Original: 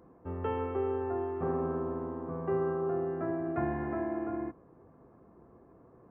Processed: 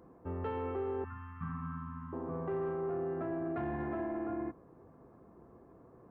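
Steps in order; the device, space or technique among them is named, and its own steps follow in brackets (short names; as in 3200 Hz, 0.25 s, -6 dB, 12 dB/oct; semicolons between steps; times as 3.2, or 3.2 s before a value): 1.04–2.13 elliptic band-stop 220–1100 Hz, stop band 40 dB; soft clipper into limiter (soft clip -24.5 dBFS, distortion -21 dB; limiter -30 dBFS, peak gain reduction 5 dB)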